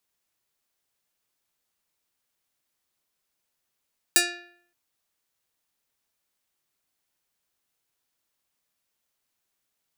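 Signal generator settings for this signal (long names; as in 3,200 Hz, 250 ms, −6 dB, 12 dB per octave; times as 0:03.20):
Karplus-Strong string F4, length 0.57 s, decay 0.64 s, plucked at 0.33, medium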